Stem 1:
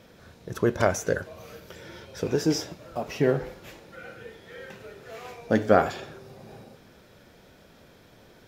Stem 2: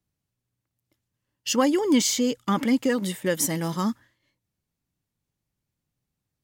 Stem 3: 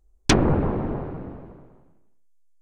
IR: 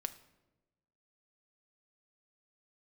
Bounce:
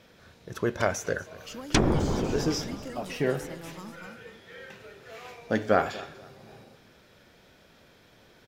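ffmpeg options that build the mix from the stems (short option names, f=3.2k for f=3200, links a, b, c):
-filter_complex "[0:a]equalizer=f=2.8k:t=o:w=2.7:g=5,volume=-5dB,asplit=2[a][b];[b]volume=-19.5dB[c];[1:a]acrossover=split=400|4700[d][e][f];[d]acompressor=threshold=-32dB:ratio=4[g];[e]acompressor=threshold=-32dB:ratio=4[h];[f]acompressor=threshold=-39dB:ratio=4[i];[g][h][i]amix=inputs=3:normalize=0,volume=-12dB,asplit=3[j][k][l];[k]volume=-5.5dB[m];[2:a]adelay=1450,volume=-1dB[n];[l]apad=whole_len=179343[o];[n][o]sidechaincompress=threshold=-38dB:ratio=8:attack=7.9:release=1190[p];[c][m]amix=inputs=2:normalize=0,aecho=0:1:242|484|726|968:1|0.3|0.09|0.027[q];[a][j][p][q]amix=inputs=4:normalize=0"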